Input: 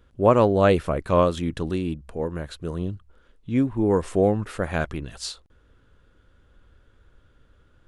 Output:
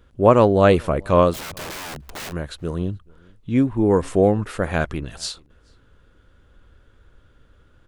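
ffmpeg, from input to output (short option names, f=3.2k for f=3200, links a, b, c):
-filter_complex "[0:a]asplit=3[a][b][c];[a]afade=t=out:st=1.33:d=0.02[d];[b]aeval=exprs='(mod(37.6*val(0)+1,2)-1)/37.6':c=same,afade=t=in:st=1.33:d=0.02,afade=t=out:st=2.31:d=0.02[e];[c]afade=t=in:st=2.31:d=0.02[f];[d][e][f]amix=inputs=3:normalize=0,asplit=2[g][h];[h]adelay=431.5,volume=-28dB,highshelf=f=4k:g=-9.71[i];[g][i]amix=inputs=2:normalize=0,volume=3.5dB"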